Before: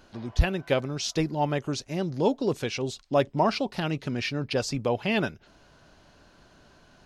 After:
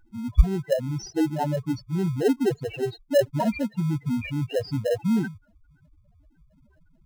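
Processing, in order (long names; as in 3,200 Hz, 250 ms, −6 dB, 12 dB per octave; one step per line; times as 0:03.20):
spectral peaks only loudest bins 2
in parallel at −9 dB: decimation without filtering 38×
on the sum: level +6 dB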